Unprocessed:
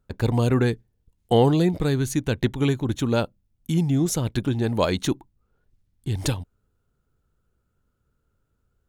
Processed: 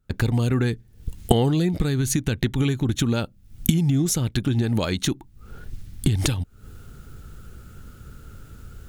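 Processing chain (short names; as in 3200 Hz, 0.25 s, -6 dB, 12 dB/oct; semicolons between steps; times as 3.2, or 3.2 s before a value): recorder AGC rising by 79 dB/s; bell 610 Hz -7 dB 1.6 oct; notch 1000 Hz, Q 9.5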